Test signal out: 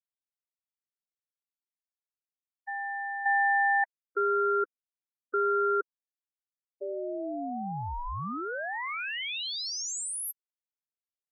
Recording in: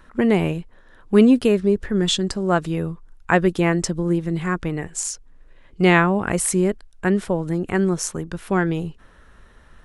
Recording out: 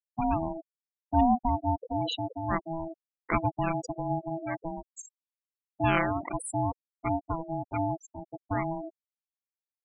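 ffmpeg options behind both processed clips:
-af "aeval=exprs='val(0)*sin(2*PI*490*n/s)':c=same,aeval=exprs='val(0)*gte(abs(val(0)),0.0168)':c=same,afftfilt=real='re*gte(hypot(re,im),0.126)':imag='im*gte(hypot(re,im),0.126)':win_size=1024:overlap=0.75,volume=-7dB"

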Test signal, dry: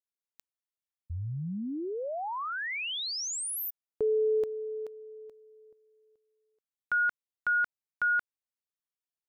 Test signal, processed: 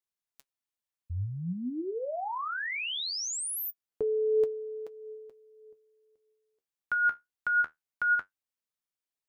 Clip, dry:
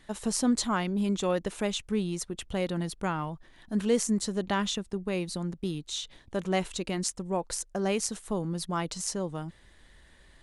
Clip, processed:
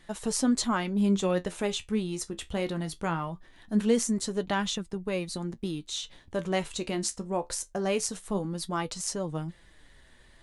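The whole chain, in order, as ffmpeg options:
-af "flanger=delay=5.6:depth=9.3:regen=55:speed=0.21:shape=triangular,volume=4.5dB"

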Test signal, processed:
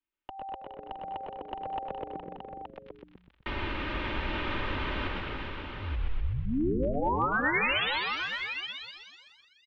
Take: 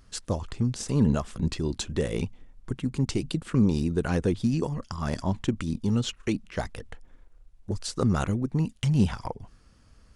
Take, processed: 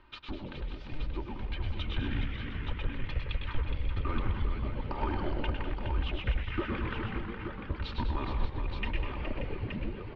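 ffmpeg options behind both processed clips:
-filter_complex "[0:a]lowshelf=f=170:t=q:w=3:g=-8.5,aecho=1:1:3.3:0.91,asplit=2[a][b];[b]asplit=8[c][d][e][f][g][h][i][j];[c]adelay=125,afreqshift=-120,volume=-8dB[k];[d]adelay=250,afreqshift=-240,volume=-12.4dB[l];[e]adelay=375,afreqshift=-360,volume=-16.9dB[m];[f]adelay=500,afreqshift=-480,volume=-21.3dB[n];[g]adelay=625,afreqshift=-600,volume=-25.7dB[o];[h]adelay=750,afreqshift=-720,volume=-30.2dB[p];[i]adelay=875,afreqshift=-840,volume=-34.6dB[q];[j]adelay=1000,afreqshift=-960,volume=-39.1dB[r];[k][l][m][n][o][p][q][r]amix=inputs=8:normalize=0[s];[a][s]amix=inputs=2:normalize=0,acompressor=threshold=-36dB:ratio=5,volume=30.5dB,asoftclip=hard,volume=-30.5dB,dynaudnorm=f=260:g=11:m=5.5dB,bandreject=f=950:w=6.9,asplit=2[t][u];[u]aecho=0:1:104|118|199|417|581|873:0.473|0.133|0.299|0.398|0.282|0.473[v];[t][v]amix=inputs=2:normalize=0,highpass=f=240:t=q:w=0.5412,highpass=f=240:t=q:w=1.307,lowpass=f=3.5k:t=q:w=0.5176,lowpass=f=3.5k:t=q:w=0.7071,lowpass=f=3.5k:t=q:w=1.932,afreqshift=-280,volume=3dB"

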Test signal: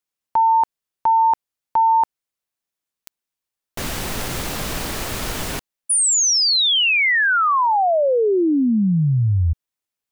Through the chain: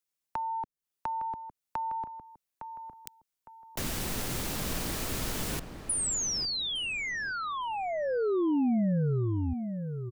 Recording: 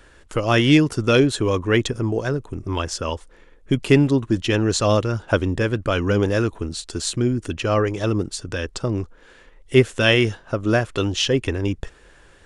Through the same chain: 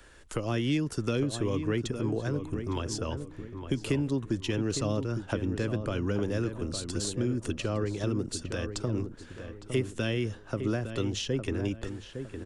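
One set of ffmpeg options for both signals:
-filter_complex "[0:a]acrossover=split=180|360[a][b][c];[a]acompressor=threshold=-29dB:ratio=4[d];[b]acompressor=threshold=-26dB:ratio=4[e];[c]acompressor=threshold=-32dB:ratio=4[f];[d][e][f]amix=inputs=3:normalize=0,highshelf=f=4.6k:g=5.5,asplit=2[g][h];[h]adelay=859,lowpass=f=1.6k:p=1,volume=-8dB,asplit=2[i][j];[j]adelay=859,lowpass=f=1.6k:p=1,volume=0.38,asplit=2[k][l];[l]adelay=859,lowpass=f=1.6k:p=1,volume=0.38,asplit=2[m][n];[n]adelay=859,lowpass=f=1.6k:p=1,volume=0.38[o];[g][i][k][m][o]amix=inputs=5:normalize=0,volume=-5dB"

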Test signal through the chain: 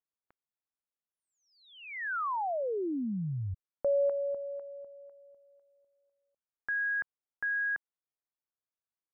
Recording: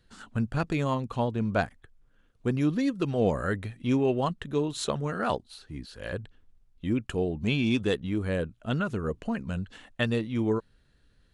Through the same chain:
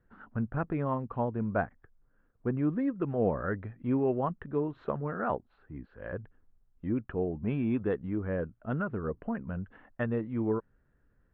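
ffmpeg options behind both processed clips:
-af "lowpass=f=1.7k:w=0.5412,lowpass=f=1.7k:w=1.3066,lowshelf=f=150:g=-3,volume=-2.5dB"

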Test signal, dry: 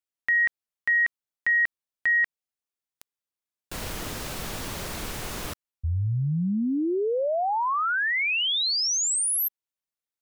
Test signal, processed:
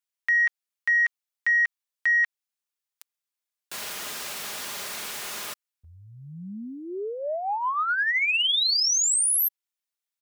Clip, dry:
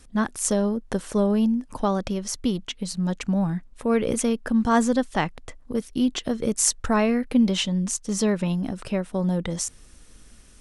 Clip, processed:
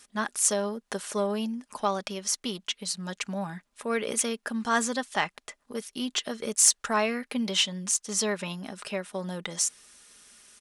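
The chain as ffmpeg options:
-filter_complex "[0:a]highpass=f=1.3k:p=1,aecho=1:1:4.9:0.32,asplit=2[a][b];[b]asoftclip=type=tanh:threshold=-20.5dB,volume=-9dB[c];[a][c]amix=inputs=2:normalize=0"

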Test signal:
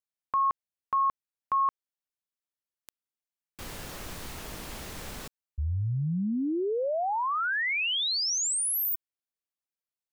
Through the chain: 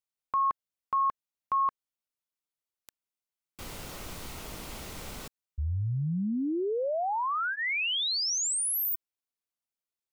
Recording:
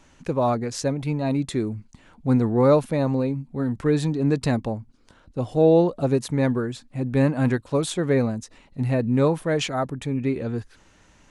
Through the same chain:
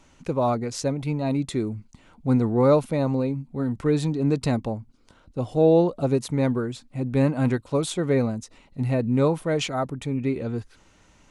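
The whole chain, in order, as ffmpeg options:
-af "bandreject=f=1.7k:w=9.2,volume=-1dB"

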